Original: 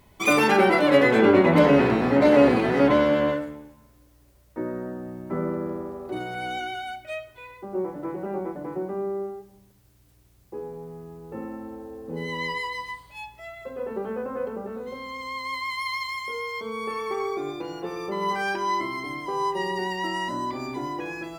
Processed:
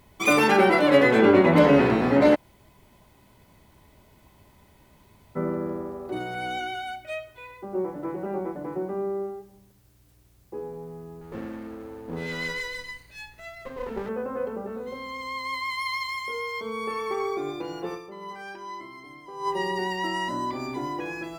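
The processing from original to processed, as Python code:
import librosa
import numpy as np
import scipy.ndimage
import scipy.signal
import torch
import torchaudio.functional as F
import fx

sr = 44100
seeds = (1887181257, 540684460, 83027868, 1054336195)

y = fx.lower_of_two(x, sr, delay_ms=0.46, at=(11.21, 14.09))
y = fx.edit(y, sr, fx.room_tone_fill(start_s=2.35, length_s=3.01, crossfade_s=0.02),
    fx.fade_down_up(start_s=17.94, length_s=1.54, db=-12.5, fade_s=0.45, curve='exp'), tone=tone)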